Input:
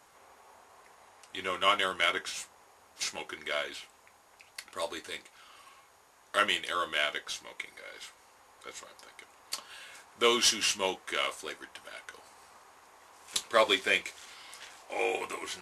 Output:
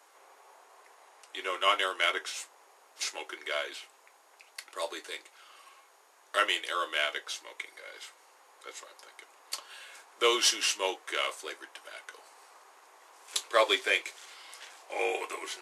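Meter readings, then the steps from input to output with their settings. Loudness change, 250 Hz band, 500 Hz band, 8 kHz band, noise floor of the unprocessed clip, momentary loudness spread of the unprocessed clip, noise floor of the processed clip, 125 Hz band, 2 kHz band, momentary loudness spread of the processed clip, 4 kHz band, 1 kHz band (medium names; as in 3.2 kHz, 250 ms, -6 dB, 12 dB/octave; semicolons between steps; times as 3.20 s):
0.0 dB, -3.0 dB, 0.0 dB, 0.0 dB, -61 dBFS, 22 LU, -61 dBFS, under -25 dB, 0.0 dB, 22 LU, 0.0 dB, 0.0 dB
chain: steep high-pass 320 Hz 36 dB/octave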